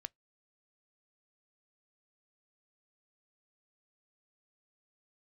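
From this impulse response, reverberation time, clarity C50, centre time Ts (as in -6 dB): 0.15 s, 39.0 dB, 1 ms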